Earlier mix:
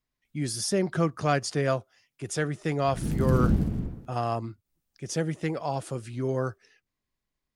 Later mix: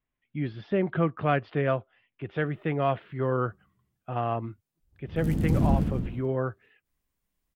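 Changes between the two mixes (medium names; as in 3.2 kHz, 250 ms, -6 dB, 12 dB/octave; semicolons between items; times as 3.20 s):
speech: add steep low-pass 3.3 kHz 48 dB/octave; background: entry +2.20 s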